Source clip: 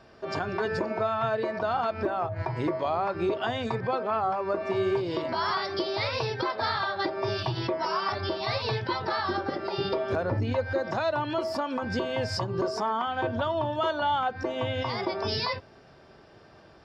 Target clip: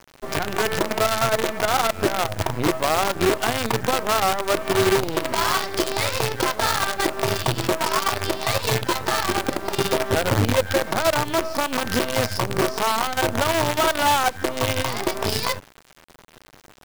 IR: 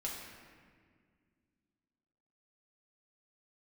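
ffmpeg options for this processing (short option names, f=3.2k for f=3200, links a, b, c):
-af "bass=f=250:g=1,treble=f=4k:g=-3,acrusher=bits=5:dc=4:mix=0:aa=0.000001,volume=6.5dB"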